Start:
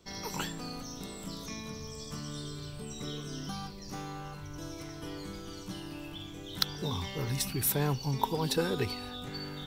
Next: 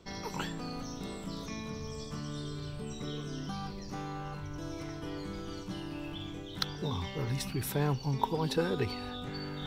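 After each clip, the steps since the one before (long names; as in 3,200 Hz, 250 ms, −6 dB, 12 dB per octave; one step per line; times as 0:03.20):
low-pass filter 3,000 Hz 6 dB per octave
reversed playback
upward compression, threshold −34 dBFS
reversed playback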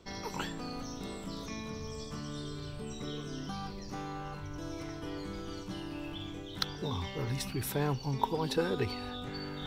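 parametric band 160 Hz −4 dB 0.44 octaves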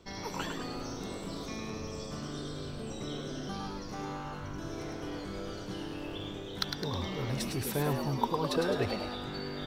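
echo with shifted repeats 105 ms, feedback 50%, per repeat +99 Hz, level −5.5 dB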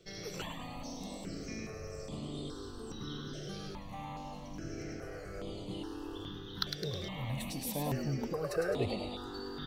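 step-sequenced phaser 2.4 Hz 250–5,600 Hz
level −1 dB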